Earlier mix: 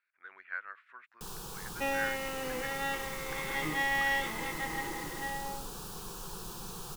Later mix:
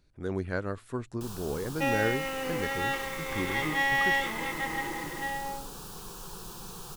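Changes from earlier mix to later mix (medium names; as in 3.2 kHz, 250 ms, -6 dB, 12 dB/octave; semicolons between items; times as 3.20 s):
speech: remove Butterworth band-pass 1.8 kHz, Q 1.6; second sound +4.0 dB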